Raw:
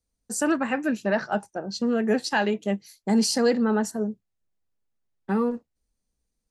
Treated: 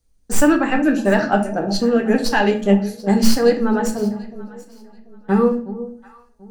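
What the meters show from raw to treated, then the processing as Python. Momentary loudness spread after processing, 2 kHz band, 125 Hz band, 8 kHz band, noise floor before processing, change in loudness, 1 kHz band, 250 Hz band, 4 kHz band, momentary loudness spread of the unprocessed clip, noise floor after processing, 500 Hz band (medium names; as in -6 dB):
14 LU, +6.5 dB, no reading, +4.0 dB, -81 dBFS, +7.5 dB, +7.5 dB, +8.0 dB, +4.5 dB, 11 LU, -54 dBFS, +8.0 dB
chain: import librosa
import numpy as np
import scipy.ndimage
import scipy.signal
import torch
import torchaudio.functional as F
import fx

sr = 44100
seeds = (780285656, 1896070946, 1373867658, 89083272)

y = fx.tracing_dist(x, sr, depth_ms=0.041)
y = fx.low_shelf(y, sr, hz=72.0, db=9.5)
y = fx.rider(y, sr, range_db=4, speed_s=0.5)
y = fx.echo_alternate(y, sr, ms=368, hz=810.0, feedback_pct=50, wet_db=-13.5)
y = fx.room_shoebox(y, sr, seeds[0], volume_m3=39.0, walls='mixed', distance_m=0.38)
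y = y * 10.0 ** (5.0 / 20.0)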